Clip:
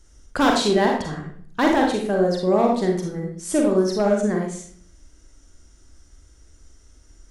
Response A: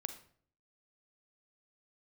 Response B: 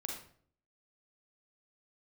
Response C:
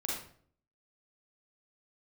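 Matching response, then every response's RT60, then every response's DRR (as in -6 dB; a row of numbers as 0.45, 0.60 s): B; 0.55, 0.55, 0.55 s; 8.5, 0.0, -4.5 dB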